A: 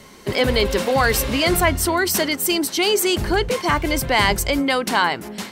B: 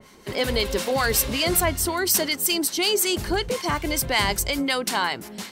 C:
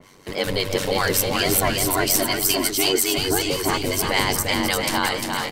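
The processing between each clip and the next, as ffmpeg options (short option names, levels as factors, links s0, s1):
-filter_complex "[0:a]acrossover=split=1000[s0][s1];[s0]aeval=exprs='val(0)*(1-0.5/2+0.5/2*cos(2*PI*5.4*n/s))':c=same[s2];[s1]aeval=exprs='val(0)*(1-0.5/2-0.5/2*cos(2*PI*5.4*n/s))':c=same[s3];[s2][s3]amix=inputs=2:normalize=0,adynamicequalizer=threshold=0.0178:dfrequency=3200:dqfactor=0.7:tfrequency=3200:tqfactor=0.7:attack=5:release=100:ratio=0.375:range=3:mode=boostabove:tftype=highshelf,volume=0.668"
-filter_complex "[0:a]aeval=exprs='val(0)*sin(2*PI*47*n/s)':c=same,asplit=2[s0][s1];[s1]aecho=0:1:350|665|948.5|1204|1433:0.631|0.398|0.251|0.158|0.1[s2];[s0][s2]amix=inputs=2:normalize=0,volume=1.41"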